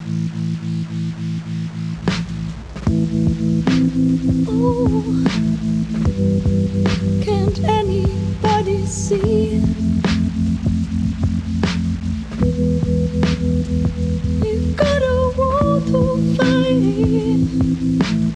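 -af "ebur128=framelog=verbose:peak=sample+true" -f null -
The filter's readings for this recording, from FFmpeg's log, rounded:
Integrated loudness:
  I:         -18.3 LUFS
  Threshold: -28.3 LUFS
Loudness range:
  LRA:         2.9 LU
  Threshold: -38.2 LUFS
  LRA low:   -19.5 LUFS
  LRA high:  -16.6 LUFS
Sample peak:
  Peak:       -3.9 dBFS
True peak:
  Peak:       -3.9 dBFS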